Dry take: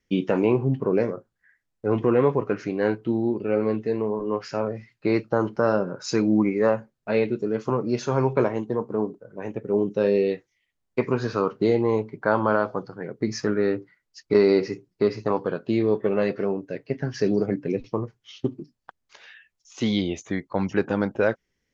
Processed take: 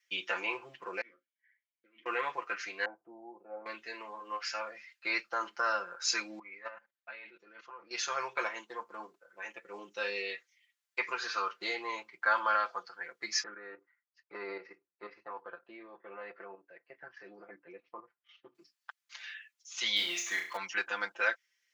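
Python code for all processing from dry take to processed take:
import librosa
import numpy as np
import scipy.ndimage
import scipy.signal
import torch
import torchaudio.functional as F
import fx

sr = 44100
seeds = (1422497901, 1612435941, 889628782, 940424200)

y = fx.chain(x, sr, fx.over_compress(threshold_db=-29.0, ratio=-1.0),
    fx.vowel_filter(vowel='i'),
    fx.high_shelf(hz=3700.0, db=-6.5), at=(1.01, 2.06))
y = fx.chain(y, sr, fx.ladder_lowpass(hz=850.0, resonance_pct=65),
    fx.low_shelf(hz=440.0, db=7.0), at=(2.85, 3.66))
y = fx.chain(y, sr, fx.lowpass(hz=2800.0, slope=12),
    fx.low_shelf(hz=70.0, db=-4.5),
    fx.level_steps(step_db=18), at=(6.39, 7.91))
y = fx.chain(y, sr, fx.level_steps(step_db=9),
    fx.lowpass(hz=1100.0, slope=12), at=(13.43, 18.55))
y = fx.chain(y, sr, fx.law_mismatch(coded='mu'),
    fx.room_flutter(wall_m=5.9, rt60_s=0.42), at=(19.96, 20.57))
y = scipy.signal.sosfilt(scipy.signal.cheby1(2, 1.0, 1800.0, 'highpass', fs=sr, output='sos'), y)
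y = y + 0.91 * np.pad(y, (int(5.8 * sr / 1000.0), 0))[:len(y)]
y = y * 10.0 ** (1.0 / 20.0)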